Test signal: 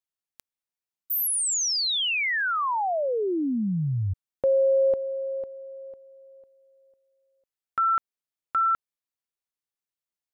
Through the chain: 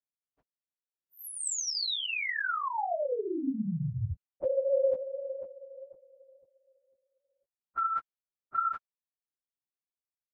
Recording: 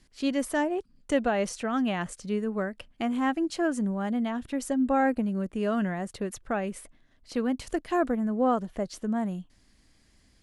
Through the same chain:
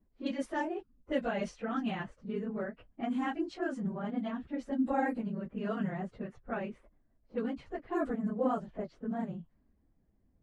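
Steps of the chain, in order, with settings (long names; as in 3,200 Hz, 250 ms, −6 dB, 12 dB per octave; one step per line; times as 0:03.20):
random phases in long frames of 50 ms
low-pass that shuts in the quiet parts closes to 670 Hz, open at −20 dBFS
level −7 dB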